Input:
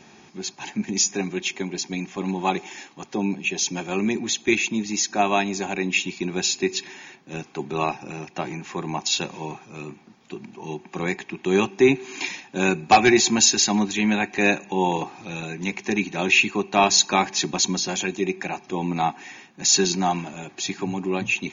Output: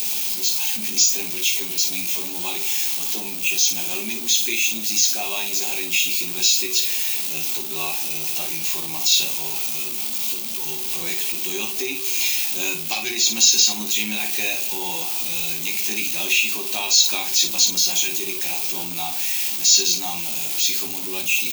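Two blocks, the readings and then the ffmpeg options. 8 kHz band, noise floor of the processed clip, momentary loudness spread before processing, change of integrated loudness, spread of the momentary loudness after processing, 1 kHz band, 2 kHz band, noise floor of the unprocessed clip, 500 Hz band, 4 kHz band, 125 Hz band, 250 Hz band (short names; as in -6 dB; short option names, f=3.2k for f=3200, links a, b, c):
n/a, -28 dBFS, 17 LU, +3.5 dB, 8 LU, -11.5 dB, -0.5 dB, -52 dBFS, -11.0 dB, +6.0 dB, -12.5 dB, -12.0 dB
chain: -filter_complex "[0:a]aeval=exprs='val(0)+0.5*0.0531*sgn(val(0))':c=same,aemphasis=mode=production:type=bsi,acrossover=split=4900[a][b];[b]acompressor=threshold=-21dB:ratio=4:attack=1:release=60[c];[a][c]amix=inputs=2:normalize=0,highshelf=f=2.3k:g=-10.5,acompressor=threshold=-19dB:ratio=4,aecho=1:1:18|56:0.596|0.422,aexciter=amount=9.8:drive=4.3:freq=2.5k,volume=-11dB"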